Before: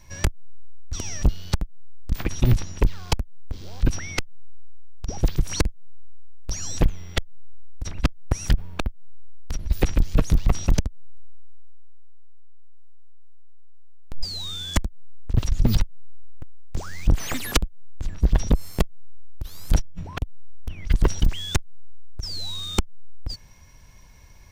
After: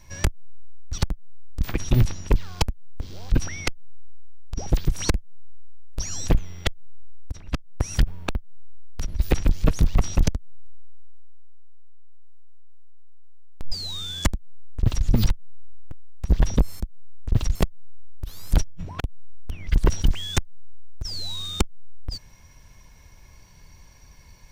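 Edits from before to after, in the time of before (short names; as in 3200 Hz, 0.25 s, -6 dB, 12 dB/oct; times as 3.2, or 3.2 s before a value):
0.98–1.49 cut
7.83–8.45 fade in, from -13 dB
14.82–15.57 copy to 18.73
16.76–18.18 cut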